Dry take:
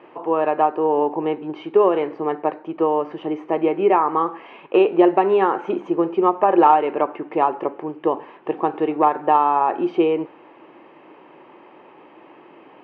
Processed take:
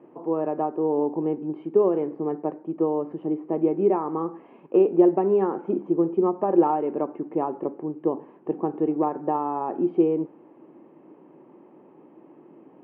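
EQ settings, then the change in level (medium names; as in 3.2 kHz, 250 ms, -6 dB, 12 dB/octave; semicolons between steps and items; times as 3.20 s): band-pass filter 200 Hz, Q 1.2; +3.0 dB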